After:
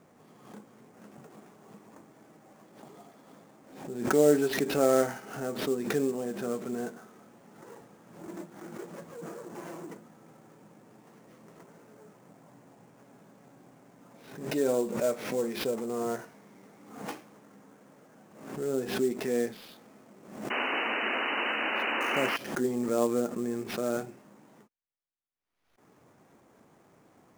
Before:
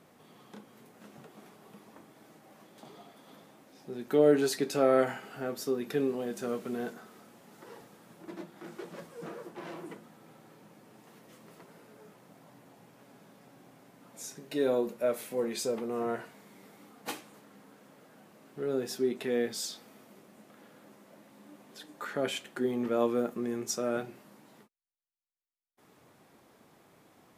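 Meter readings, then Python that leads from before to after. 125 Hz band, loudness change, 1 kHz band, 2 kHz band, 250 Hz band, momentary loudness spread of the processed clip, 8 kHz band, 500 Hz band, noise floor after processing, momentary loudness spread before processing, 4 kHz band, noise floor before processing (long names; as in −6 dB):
+3.0 dB, +2.0 dB, +4.5 dB, +9.5 dB, +2.0 dB, 18 LU, 0.0 dB, +1.0 dB, −62 dBFS, 21 LU, +4.5 dB, −62 dBFS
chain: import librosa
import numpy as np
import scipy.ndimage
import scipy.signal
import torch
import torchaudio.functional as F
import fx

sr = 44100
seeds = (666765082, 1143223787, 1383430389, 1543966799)

y = fx.air_absorb(x, sr, metres=320.0)
y = fx.sample_hold(y, sr, seeds[0], rate_hz=7900.0, jitter_pct=20)
y = fx.spec_paint(y, sr, seeds[1], shape='noise', start_s=20.5, length_s=1.87, low_hz=210.0, high_hz=3000.0, level_db=-32.0)
y = fx.pre_swell(y, sr, db_per_s=77.0)
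y = F.gain(torch.from_numpy(y), 1.5).numpy()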